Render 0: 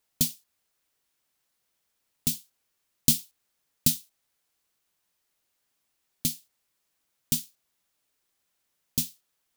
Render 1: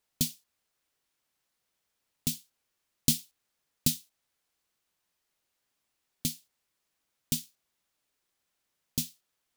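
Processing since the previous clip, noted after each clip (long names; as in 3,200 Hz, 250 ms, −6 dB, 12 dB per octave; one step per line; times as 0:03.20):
high-shelf EQ 8,400 Hz −5 dB
level −1.5 dB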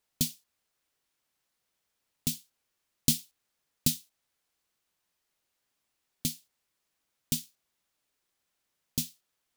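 no processing that can be heard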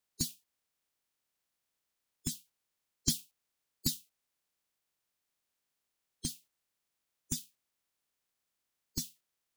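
spectral magnitudes quantised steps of 30 dB
level −4 dB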